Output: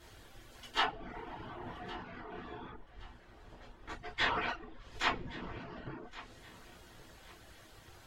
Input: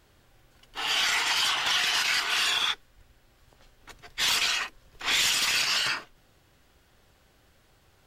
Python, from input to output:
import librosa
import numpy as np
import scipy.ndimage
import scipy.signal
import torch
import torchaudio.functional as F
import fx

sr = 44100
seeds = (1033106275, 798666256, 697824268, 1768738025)

p1 = fx.lowpass(x, sr, hz=fx.line((2.67, 2500.0), (4.48, 1000.0)), slope=6, at=(2.67, 4.48), fade=0.02)
p2 = fx.env_lowpass_down(p1, sr, base_hz=300.0, full_db=-26.0)
p3 = fx.rev_double_slope(p2, sr, seeds[0], early_s=0.32, late_s=2.6, knee_db=-28, drr_db=-6.5)
p4 = fx.dereverb_blind(p3, sr, rt60_s=0.53)
y = p4 + fx.echo_feedback(p4, sr, ms=1118, feedback_pct=31, wet_db=-17.5, dry=0)